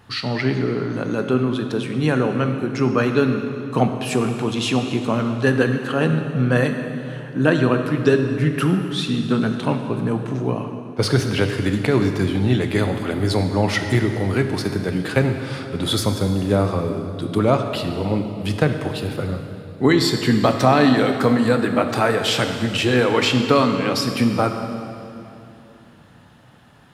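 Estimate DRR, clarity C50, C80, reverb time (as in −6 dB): 5.5 dB, 6.5 dB, 7.0 dB, 2.9 s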